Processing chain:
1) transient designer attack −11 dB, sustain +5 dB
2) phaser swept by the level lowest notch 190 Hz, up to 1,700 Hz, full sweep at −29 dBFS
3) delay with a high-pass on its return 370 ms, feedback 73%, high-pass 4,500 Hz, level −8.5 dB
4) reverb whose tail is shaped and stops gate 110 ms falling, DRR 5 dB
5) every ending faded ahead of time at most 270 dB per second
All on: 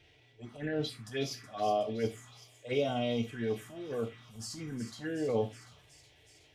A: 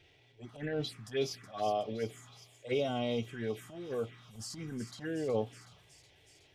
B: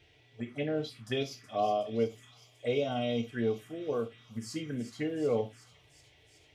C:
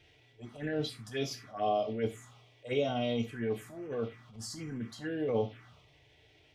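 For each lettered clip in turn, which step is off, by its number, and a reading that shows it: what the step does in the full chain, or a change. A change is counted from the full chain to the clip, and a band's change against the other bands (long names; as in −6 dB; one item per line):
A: 4, change in integrated loudness −1.5 LU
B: 1, 8 kHz band −4.0 dB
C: 3, change in momentary loudness spread −5 LU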